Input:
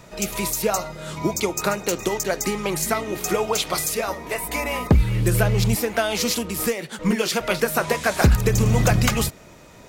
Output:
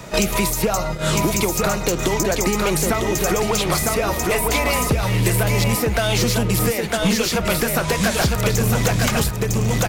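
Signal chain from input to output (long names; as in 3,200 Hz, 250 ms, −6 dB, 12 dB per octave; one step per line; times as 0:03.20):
noise gate −34 dBFS, range −26 dB
in parallel at −2.5 dB: downward compressor, threshold −26 dBFS, peak gain reduction 14 dB
on the sum: soft clipping −14 dBFS, distortion −13 dB
single-tap delay 954 ms −5 dB
multiband upward and downward compressor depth 100%
level +1 dB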